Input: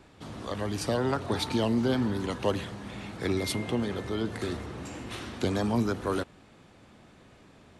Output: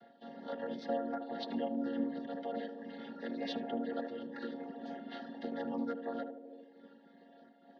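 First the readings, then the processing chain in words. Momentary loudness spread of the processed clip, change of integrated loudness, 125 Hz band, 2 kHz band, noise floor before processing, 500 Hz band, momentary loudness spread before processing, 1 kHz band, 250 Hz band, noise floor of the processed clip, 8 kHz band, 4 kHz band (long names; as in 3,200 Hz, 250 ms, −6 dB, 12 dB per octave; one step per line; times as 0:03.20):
13 LU, −9.0 dB, −25.0 dB, −11.5 dB, −56 dBFS, −8.0 dB, 12 LU, −7.5 dB, −8.0 dB, −62 dBFS, below −25 dB, −13.0 dB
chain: channel vocoder with a chord as carrier minor triad, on A#3
in parallel at +2.5 dB: brickwall limiter −27 dBFS, peak gain reduction 12 dB
on the sum: reverb reduction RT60 0.89 s
low-pass filter 4,100 Hz 12 dB per octave
phaser with its sweep stopped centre 1,600 Hz, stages 8
downward compressor 2 to 1, threshold −36 dBFS, peak gain reduction 6.5 dB
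on a send: feedback echo with a band-pass in the loop 76 ms, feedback 77%, band-pass 390 Hz, level −4 dB
on the sum: amplitude modulation by smooth noise, depth 65%
level +2 dB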